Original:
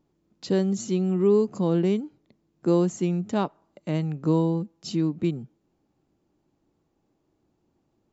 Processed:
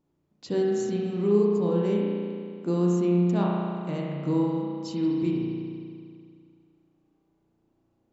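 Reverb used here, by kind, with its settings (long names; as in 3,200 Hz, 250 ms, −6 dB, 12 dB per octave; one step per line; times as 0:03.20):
spring reverb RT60 2.3 s, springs 34 ms, chirp 45 ms, DRR −3.5 dB
level −6 dB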